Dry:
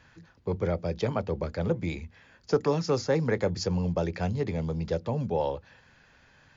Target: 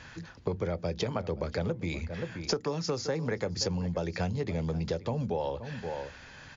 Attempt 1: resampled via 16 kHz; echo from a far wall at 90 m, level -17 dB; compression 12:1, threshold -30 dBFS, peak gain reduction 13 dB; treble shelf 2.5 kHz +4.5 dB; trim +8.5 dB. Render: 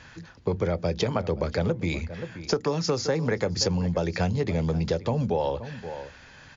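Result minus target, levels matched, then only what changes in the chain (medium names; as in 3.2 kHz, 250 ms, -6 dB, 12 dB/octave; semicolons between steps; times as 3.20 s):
compression: peak gain reduction -6 dB
change: compression 12:1, threshold -36.5 dBFS, peak gain reduction 19 dB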